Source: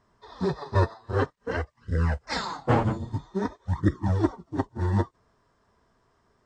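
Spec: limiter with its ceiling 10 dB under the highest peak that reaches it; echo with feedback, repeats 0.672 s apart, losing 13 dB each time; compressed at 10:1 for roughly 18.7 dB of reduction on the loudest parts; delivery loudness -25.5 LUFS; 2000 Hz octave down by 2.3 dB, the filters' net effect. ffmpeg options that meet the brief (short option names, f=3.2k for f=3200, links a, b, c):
-af "equalizer=f=2k:t=o:g=-3,acompressor=threshold=-36dB:ratio=10,alimiter=level_in=11.5dB:limit=-24dB:level=0:latency=1,volume=-11.5dB,aecho=1:1:672|1344|2016:0.224|0.0493|0.0108,volume=20.5dB"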